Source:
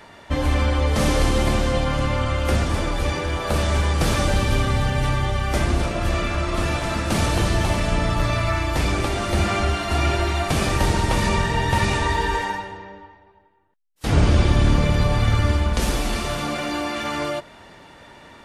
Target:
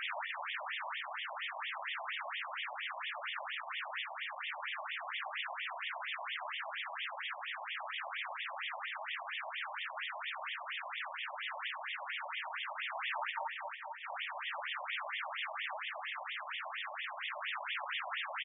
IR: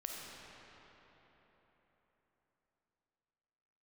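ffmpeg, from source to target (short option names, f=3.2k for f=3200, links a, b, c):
-filter_complex "[0:a]highpass=f=47:w=0.5412,highpass=f=47:w=1.3066,equalizer=f=83:t=o:w=0.22:g=-10,areverse,acompressor=threshold=-35dB:ratio=5,areverse,aeval=exprs='0.0668*(cos(1*acos(clip(val(0)/0.0668,-1,1)))-cos(1*PI/2))+0.0211*(cos(5*acos(clip(val(0)/0.0668,-1,1)))-cos(5*PI/2))+0.00119*(cos(8*acos(clip(val(0)/0.0668,-1,1)))-cos(8*PI/2))':c=same,aeval=exprs='(mod(89.1*val(0)+1,2)-1)/89.1':c=same,asplit=2[a][b];[b]adelay=448,lowpass=f=3.7k:p=1,volume=-6.5dB,asplit=2[c][d];[d]adelay=448,lowpass=f=3.7k:p=1,volume=0.49,asplit=2[e][f];[f]adelay=448,lowpass=f=3.7k:p=1,volume=0.49,asplit=2[g][h];[h]adelay=448,lowpass=f=3.7k:p=1,volume=0.49,asplit=2[i][j];[j]adelay=448,lowpass=f=3.7k:p=1,volume=0.49,asplit=2[k][l];[l]adelay=448,lowpass=f=3.7k:p=1,volume=0.49[m];[a][c][e][g][i][k][m]amix=inputs=7:normalize=0,asplit=2[n][o];[1:a]atrim=start_sample=2205,adelay=56[p];[o][p]afir=irnorm=-1:irlink=0,volume=-8dB[q];[n][q]amix=inputs=2:normalize=0,afftfilt=real='re*between(b*sr/1024,780*pow(2600/780,0.5+0.5*sin(2*PI*4.3*pts/sr))/1.41,780*pow(2600/780,0.5+0.5*sin(2*PI*4.3*pts/sr))*1.41)':imag='im*between(b*sr/1024,780*pow(2600/780,0.5+0.5*sin(2*PI*4.3*pts/sr))/1.41,780*pow(2600/780,0.5+0.5*sin(2*PI*4.3*pts/sr))*1.41)':win_size=1024:overlap=0.75,volume=12.5dB"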